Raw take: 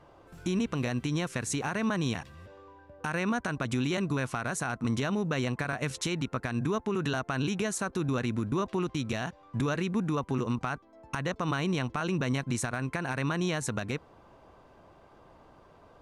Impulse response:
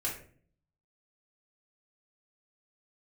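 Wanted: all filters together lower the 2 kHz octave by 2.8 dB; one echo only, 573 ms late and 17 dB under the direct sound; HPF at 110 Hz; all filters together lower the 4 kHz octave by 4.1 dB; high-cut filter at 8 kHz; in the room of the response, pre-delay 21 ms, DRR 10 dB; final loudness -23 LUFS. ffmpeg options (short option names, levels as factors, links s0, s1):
-filter_complex "[0:a]highpass=110,lowpass=8000,equalizer=f=2000:t=o:g=-3,equalizer=f=4000:t=o:g=-4,aecho=1:1:573:0.141,asplit=2[s0][s1];[1:a]atrim=start_sample=2205,adelay=21[s2];[s1][s2]afir=irnorm=-1:irlink=0,volume=0.2[s3];[s0][s3]amix=inputs=2:normalize=0,volume=2.82"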